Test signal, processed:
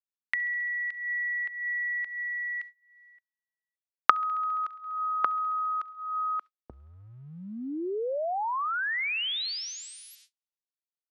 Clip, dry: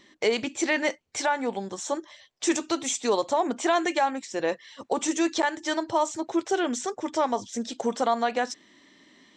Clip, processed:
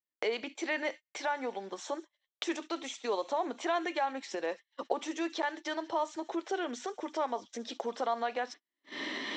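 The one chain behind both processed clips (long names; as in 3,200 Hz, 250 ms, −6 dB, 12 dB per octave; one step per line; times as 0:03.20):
camcorder AGC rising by 50 dB per second
low-shelf EQ 71 Hz −7.5 dB
on a send: delay with a high-pass on its return 68 ms, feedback 84%, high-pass 2,500 Hz, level −19.5 dB
on the sum: noise gate −33 dBFS, range −42 dB
three-way crossover with the lows and the highs turned down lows −19 dB, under 260 Hz, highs −23 dB, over 5,000 Hz
level −7.5 dB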